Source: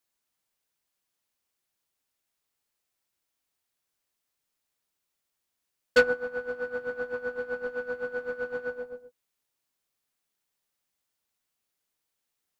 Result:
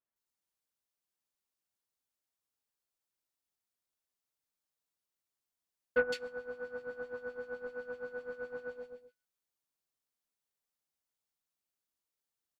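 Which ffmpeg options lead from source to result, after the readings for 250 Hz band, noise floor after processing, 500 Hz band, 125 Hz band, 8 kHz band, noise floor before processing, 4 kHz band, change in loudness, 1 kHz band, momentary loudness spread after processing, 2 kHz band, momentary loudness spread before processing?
-8.5 dB, under -85 dBFS, -8.5 dB, -8.5 dB, no reading, -83 dBFS, -9.5 dB, -9.0 dB, -9.0 dB, 12 LU, -10.0 dB, 12 LU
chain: -filter_complex "[0:a]acrossover=split=2300[s0][s1];[s1]adelay=160[s2];[s0][s2]amix=inputs=2:normalize=0,volume=0.376"

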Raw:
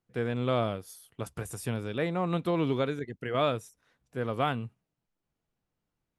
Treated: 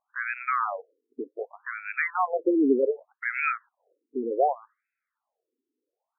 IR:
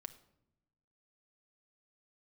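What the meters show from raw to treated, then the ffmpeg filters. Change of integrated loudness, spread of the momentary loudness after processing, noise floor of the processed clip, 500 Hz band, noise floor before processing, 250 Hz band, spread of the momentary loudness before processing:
+4.0 dB, 15 LU, under -85 dBFS, +2.5 dB, under -85 dBFS, +3.5 dB, 12 LU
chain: -af "highshelf=f=2100:g=8.5,afftfilt=real='re*between(b*sr/1024,310*pow(1900/310,0.5+0.5*sin(2*PI*0.66*pts/sr))/1.41,310*pow(1900/310,0.5+0.5*sin(2*PI*0.66*pts/sr))*1.41)':imag='im*between(b*sr/1024,310*pow(1900/310,0.5+0.5*sin(2*PI*0.66*pts/sr))/1.41,310*pow(1900/310,0.5+0.5*sin(2*PI*0.66*pts/sr))*1.41)':win_size=1024:overlap=0.75,volume=2.82"

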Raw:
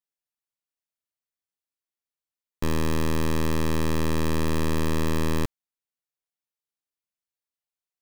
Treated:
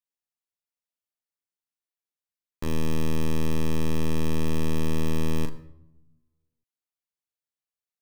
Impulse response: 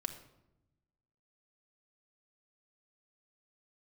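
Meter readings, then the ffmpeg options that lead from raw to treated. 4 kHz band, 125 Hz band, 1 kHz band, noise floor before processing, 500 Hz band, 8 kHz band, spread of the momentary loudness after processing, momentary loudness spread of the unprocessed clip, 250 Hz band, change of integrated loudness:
-3.5 dB, -1.5 dB, -6.5 dB, under -85 dBFS, -3.0 dB, -4.0 dB, 4 LU, 3 LU, -1.5 dB, -2.5 dB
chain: -filter_complex "[0:a]asplit=2[s0][s1];[1:a]atrim=start_sample=2205,adelay=38[s2];[s1][s2]afir=irnorm=-1:irlink=0,volume=0.531[s3];[s0][s3]amix=inputs=2:normalize=0,volume=0.562"

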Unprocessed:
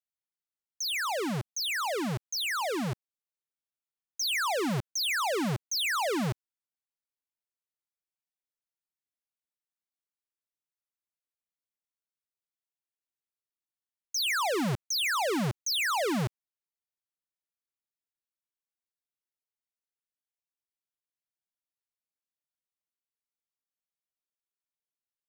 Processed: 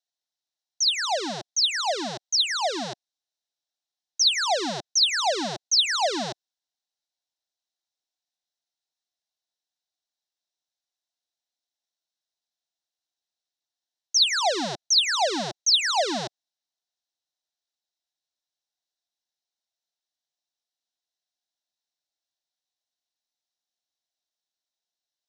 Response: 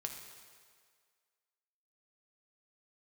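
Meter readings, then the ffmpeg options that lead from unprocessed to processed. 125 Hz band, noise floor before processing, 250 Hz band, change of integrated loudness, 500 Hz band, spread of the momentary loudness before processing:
-10.5 dB, under -85 dBFS, -2.5 dB, +7.0 dB, +3.5 dB, 7 LU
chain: -af "highpass=350,equalizer=f=450:t=q:w=4:g=-7,equalizer=f=710:t=q:w=4:g=7,equalizer=f=1200:t=q:w=4:g=-10,equalizer=f=2300:t=q:w=4:g=-8,equalizer=f=3900:t=q:w=4:g=10,equalizer=f=5600:t=q:w=4:g=7,lowpass=f=7700:w=0.5412,lowpass=f=7700:w=1.3066,volume=1.68"

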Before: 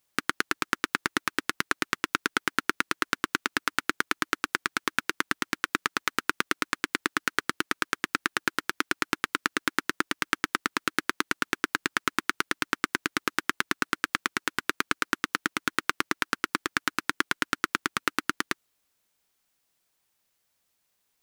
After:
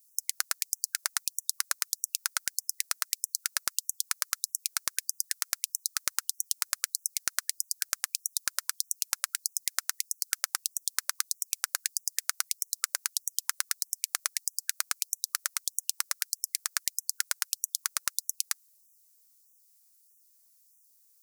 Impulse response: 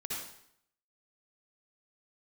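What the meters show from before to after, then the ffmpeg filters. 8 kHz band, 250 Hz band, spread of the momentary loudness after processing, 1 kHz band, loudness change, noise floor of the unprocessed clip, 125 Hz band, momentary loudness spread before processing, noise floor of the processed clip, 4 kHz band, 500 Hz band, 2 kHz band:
+9.5 dB, under -40 dB, 2 LU, -14.0 dB, -1.5 dB, -76 dBFS, under -40 dB, 2 LU, -64 dBFS, -2.0 dB, under -35 dB, -12.0 dB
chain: -af "asubboost=boost=10.5:cutoff=200,aexciter=amount=8.3:drive=3.8:freq=4600,afftfilt=real='re*gte(b*sr/1024,570*pow(5700/570,0.5+0.5*sin(2*PI*1.6*pts/sr)))':imag='im*gte(b*sr/1024,570*pow(5700/570,0.5+0.5*sin(2*PI*1.6*pts/sr)))':win_size=1024:overlap=0.75,volume=0.398"

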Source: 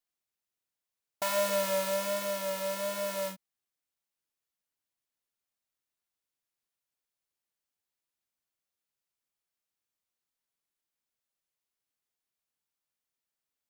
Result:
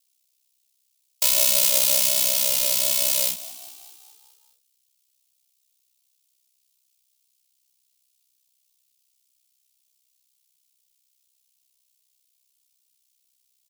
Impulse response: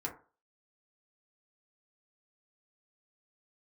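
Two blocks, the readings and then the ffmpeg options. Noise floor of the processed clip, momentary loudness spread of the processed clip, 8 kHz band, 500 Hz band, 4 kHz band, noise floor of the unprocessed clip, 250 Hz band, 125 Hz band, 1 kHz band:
-71 dBFS, 8 LU, +18.5 dB, -4.0 dB, +15.5 dB, under -85 dBFS, -4.5 dB, no reading, -4.0 dB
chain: -filter_complex "[0:a]aeval=exprs='val(0)*sin(2*PI*32*n/s)':c=same,aexciter=amount=6.4:drive=8.1:freq=2400,asplit=7[s0][s1][s2][s3][s4][s5][s6];[s1]adelay=206,afreqshift=50,volume=0.15[s7];[s2]adelay=412,afreqshift=100,volume=0.0881[s8];[s3]adelay=618,afreqshift=150,volume=0.0519[s9];[s4]adelay=824,afreqshift=200,volume=0.0309[s10];[s5]adelay=1030,afreqshift=250,volume=0.0182[s11];[s6]adelay=1236,afreqshift=300,volume=0.0107[s12];[s0][s7][s8][s9][s10][s11][s12]amix=inputs=7:normalize=0,alimiter=level_in=1.88:limit=0.891:release=50:level=0:latency=1,volume=0.531"

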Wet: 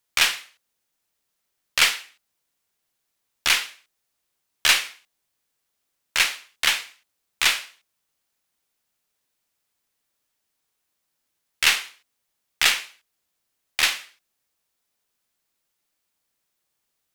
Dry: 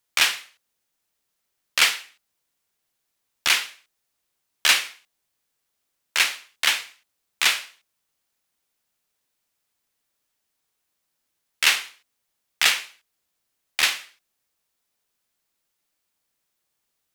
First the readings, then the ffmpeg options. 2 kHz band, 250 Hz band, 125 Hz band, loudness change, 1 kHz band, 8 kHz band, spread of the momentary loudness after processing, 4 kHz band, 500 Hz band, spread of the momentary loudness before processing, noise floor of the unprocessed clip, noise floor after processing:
0.0 dB, +1.5 dB, no reading, 0.0 dB, 0.0 dB, 0.0 dB, 14 LU, 0.0 dB, +0.5 dB, 14 LU, -78 dBFS, -78 dBFS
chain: -af "aeval=exprs='0.668*(cos(1*acos(clip(val(0)/0.668,-1,1)))-cos(1*PI/2))+0.0168*(cos(6*acos(clip(val(0)/0.668,-1,1)))-cos(6*PI/2))':c=same"

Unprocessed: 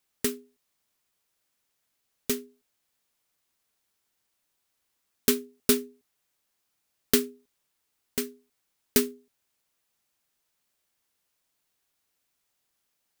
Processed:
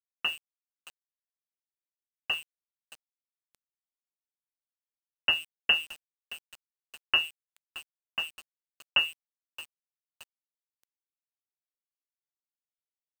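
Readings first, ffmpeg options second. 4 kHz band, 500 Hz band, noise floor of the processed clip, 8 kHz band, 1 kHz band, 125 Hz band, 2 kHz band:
+8.0 dB, -19.5 dB, under -85 dBFS, -20.0 dB, +3.5 dB, under -10 dB, +10.0 dB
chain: -filter_complex "[0:a]highpass=45,lowpass=f=2600:t=q:w=0.5098,lowpass=f=2600:t=q:w=0.6013,lowpass=f=2600:t=q:w=0.9,lowpass=f=2600:t=q:w=2.563,afreqshift=-3100,bandreject=f=147.4:t=h:w=4,bandreject=f=294.8:t=h:w=4,asplit=2[s0][s1];[s1]aecho=0:1:622|1244|1866|2488:0.126|0.0629|0.0315|0.0157[s2];[s0][s2]amix=inputs=2:normalize=0,aeval=exprs='val(0)*gte(abs(val(0)),0.00891)':c=same"

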